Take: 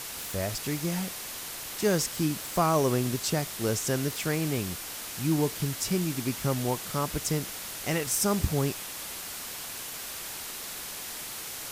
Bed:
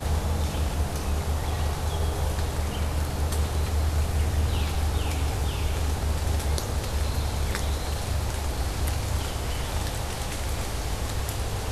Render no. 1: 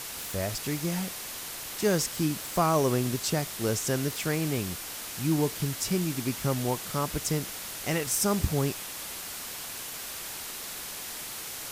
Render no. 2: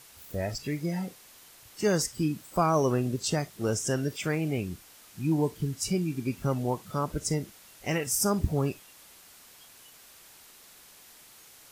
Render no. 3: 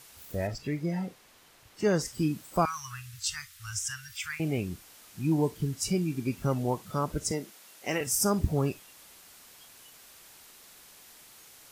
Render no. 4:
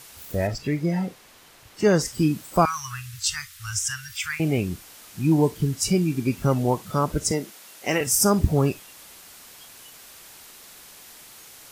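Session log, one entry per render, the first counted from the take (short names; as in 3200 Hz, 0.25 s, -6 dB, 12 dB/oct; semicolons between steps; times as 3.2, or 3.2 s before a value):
nothing audible
noise print and reduce 15 dB
0.47–2.06 high shelf 4800 Hz -10.5 dB; 2.65–4.4 inverse Chebyshev band-stop 190–650 Hz, stop band 50 dB; 7.31–8.01 HPF 240 Hz
gain +7 dB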